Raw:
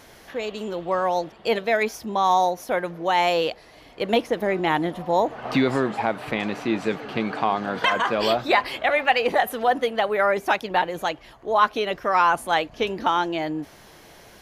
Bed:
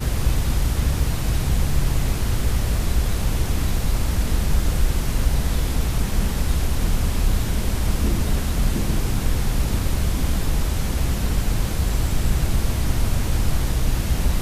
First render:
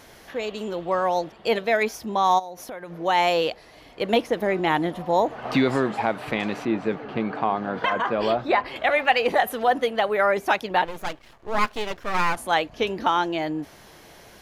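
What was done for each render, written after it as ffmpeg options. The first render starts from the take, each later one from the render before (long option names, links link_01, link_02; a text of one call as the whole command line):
ffmpeg -i in.wav -filter_complex "[0:a]asplit=3[link_01][link_02][link_03];[link_01]afade=type=out:start_time=2.38:duration=0.02[link_04];[link_02]acompressor=threshold=-32dB:ratio=10:attack=3.2:release=140:knee=1:detection=peak,afade=type=in:start_time=2.38:duration=0.02,afade=type=out:start_time=2.91:duration=0.02[link_05];[link_03]afade=type=in:start_time=2.91:duration=0.02[link_06];[link_04][link_05][link_06]amix=inputs=3:normalize=0,asettb=1/sr,asplit=3[link_07][link_08][link_09];[link_07]atrim=end=6.654[link_10];[link_08]atrim=start=6.65:end=8.76,asetpts=PTS-STARTPTS,afade=type=in:duration=0.004:curve=qsin,afade=type=out:start_time=2.106:duration=0.004:curve=qsin,lowpass=frequency=1500:poles=1[link_11];[link_09]atrim=start=8.756[link_12];[link_10][link_11]acrossfade=duration=0.004:curve1=hsin:curve2=qsin[link_13];[link_13][link_12]acrossfade=duration=0.004:curve1=qsin:curve2=hsin,asettb=1/sr,asplit=3[link_14][link_15][link_16];[link_14]atrim=end=10.854[link_17];[link_15]atrim=start=10.85:end=12.37,asetpts=PTS-STARTPTS,afade=type=in:duration=0.004:curve=qsin,afade=type=out:start_time=1.516:duration=0.004:curve=qsin,aeval=exprs='max(val(0),0)':channel_layout=same[link_18];[link_16]atrim=start=12.366[link_19];[link_17][link_18]acrossfade=duration=0.004:curve1=hsin:curve2=qsin[link_20];[link_20][link_19]acrossfade=duration=0.004:curve1=qsin:curve2=hsin" out.wav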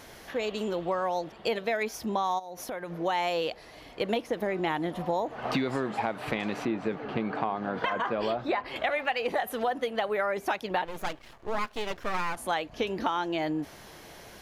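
ffmpeg -i in.wav -af "acompressor=threshold=-26dB:ratio=5" out.wav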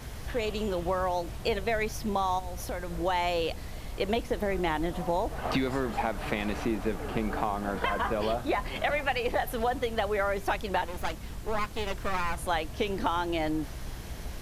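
ffmpeg -i in.wav -i bed.wav -filter_complex "[1:a]volume=-19dB[link_01];[0:a][link_01]amix=inputs=2:normalize=0" out.wav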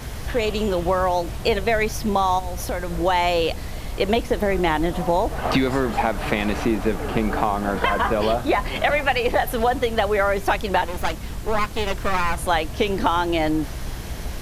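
ffmpeg -i in.wav -af "volume=8.5dB" out.wav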